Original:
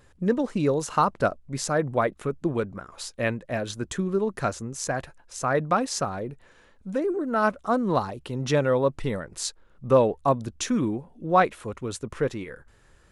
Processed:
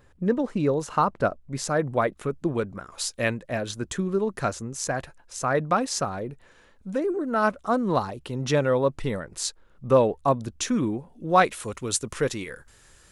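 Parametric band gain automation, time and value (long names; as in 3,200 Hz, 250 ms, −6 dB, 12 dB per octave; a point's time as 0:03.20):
parametric band 9,400 Hz 2.8 octaves
0:01.29 −5.5 dB
0:01.87 +1.5 dB
0:02.60 +1.5 dB
0:03.13 +9.5 dB
0:03.59 +1.5 dB
0:10.89 +1.5 dB
0:11.65 +13.5 dB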